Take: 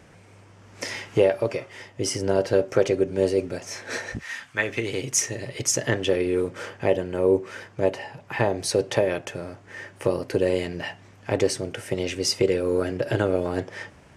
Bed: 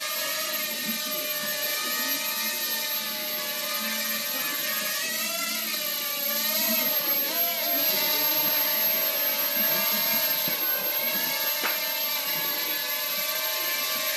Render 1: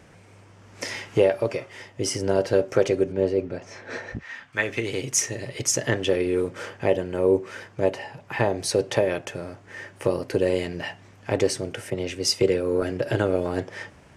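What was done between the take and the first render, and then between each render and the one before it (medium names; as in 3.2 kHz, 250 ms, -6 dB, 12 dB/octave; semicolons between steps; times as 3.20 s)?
3.12–4.53 s: tape spacing loss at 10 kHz 20 dB; 11.90–12.82 s: three bands expanded up and down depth 40%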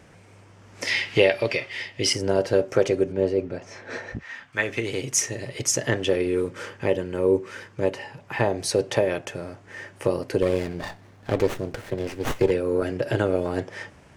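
0.87–2.13 s: high-order bell 3 kHz +11.5 dB; 6.29–8.21 s: peaking EQ 700 Hz -9.5 dB 0.29 oct; 10.42–12.51 s: sliding maximum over 9 samples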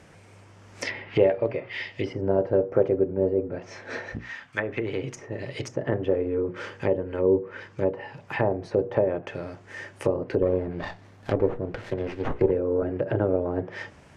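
hum notches 60/120/180/240/300/360/420/480 Hz; low-pass that closes with the level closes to 920 Hz, closed at -22 dBFS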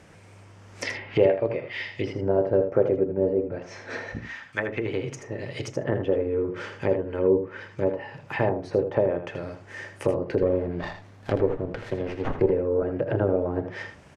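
delay 80 ms -9 dB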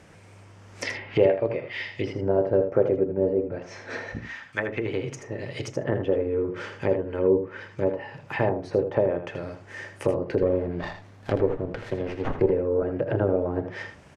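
no audible change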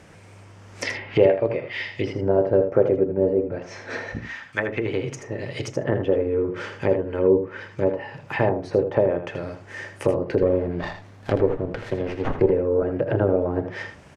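trim +3 dB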